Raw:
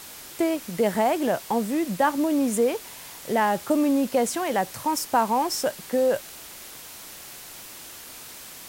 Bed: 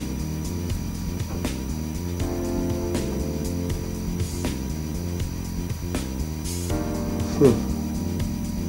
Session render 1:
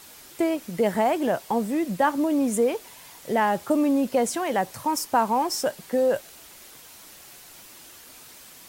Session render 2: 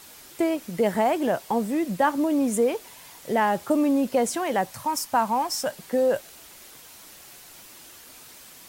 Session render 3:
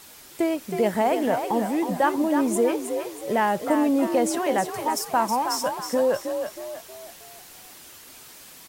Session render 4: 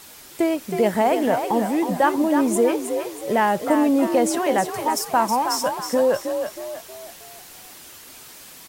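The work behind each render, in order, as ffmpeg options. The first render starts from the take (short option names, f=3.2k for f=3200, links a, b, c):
-af "afftdn=nr=6:nf=-42"
-filter_complex "[0:a]asettb=1/sr,asplit=3[a][b][c];[a]atrim=end=4.664[d];[b]atrim=start=4.66:end=5.72,asetpts=PTS-STARTPTS,afade=t=in:d=0.004:c=qsin,afade=t=out:st=1.056:d=0.004:c=qsin,equalizer=f=380:t=o:w=0.55:g=-12.5[e];[c]atrim=start=5.716[f];[d][e]acrossfade=d=0.004:c1=hsin:c2=qsin[g];[g][f]acrossfade=d=0.004:c1=qsin:c2=hsin"
-filter_complex "[0:a]asplit=6[a][b][c][d][e][f];[b]adelay=318,afreqshift=45,volume=-7dB[g];[c]adelay=636,afreqshift=90,volume=-14.5dB[h];[d]adelay=954,afreqshift=135,volume=-22.1dB[i];[e]adelay=1272,afreqshift=180,volume=-29.6dB[j];[f]adelay=1590,afreqshift=225,volume=-37.1dB[k];[a][g][h][i][j][k]amix=inputs=6:normalize=0"
-af "volume=3dB"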